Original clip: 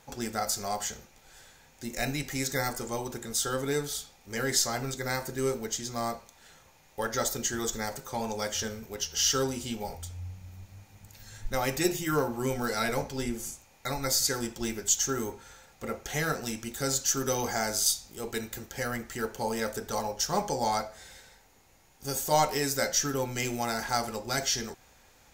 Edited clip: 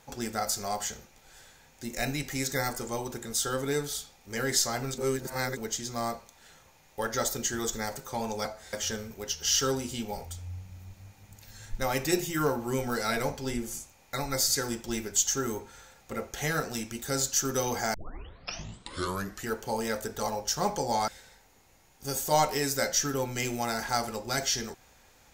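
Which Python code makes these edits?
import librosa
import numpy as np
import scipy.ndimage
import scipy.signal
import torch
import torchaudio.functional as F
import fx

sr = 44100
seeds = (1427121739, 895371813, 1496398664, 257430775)

y = fx.edit(x, sr, fx.reverse_span(start_s=4.98, length_s=0.59),
    fx.tape_start(start_s=17.66, length_s=1.55),
    fx.move(start_s=20.8, length_s=0.28, to_s=8.45), tone=tone)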